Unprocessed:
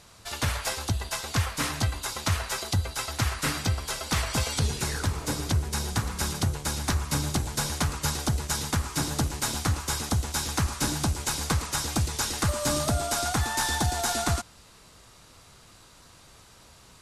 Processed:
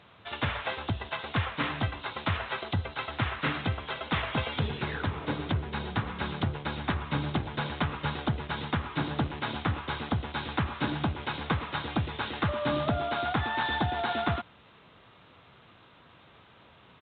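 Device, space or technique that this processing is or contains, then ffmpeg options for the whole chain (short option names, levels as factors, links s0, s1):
Bluetooth headset: -af "highpass=110,aresample=8000,aresample=44100" -ar 16000 -c:a sbc -b:a 64k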